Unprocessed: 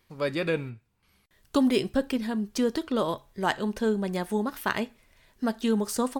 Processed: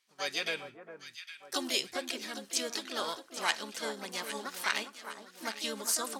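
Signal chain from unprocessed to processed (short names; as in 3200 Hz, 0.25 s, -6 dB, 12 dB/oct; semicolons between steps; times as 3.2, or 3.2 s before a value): weighting filter ITU-R 468; harmoniser +5 st -4 dB; gate -48 dBFS, range -8 dB; echo with dull and thin repeats by turns 0.405 s, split 1400 Hz, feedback 68%, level -8.5 dB; gain -7.5 dB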